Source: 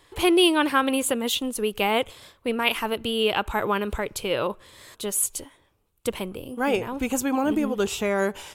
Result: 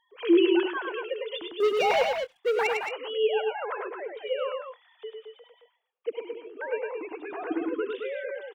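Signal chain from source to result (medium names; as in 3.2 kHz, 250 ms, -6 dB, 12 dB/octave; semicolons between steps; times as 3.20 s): formants replaced by sine waves; 1.60–2.67 s: waveshaping leveller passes 3; 6.23–7.15 s: low-pass 2.6 kHz; multi-tap echo 65/102/118/219/242 ms -19.5/-4/-18/-6.5/-18.5 dB; trim -7 dB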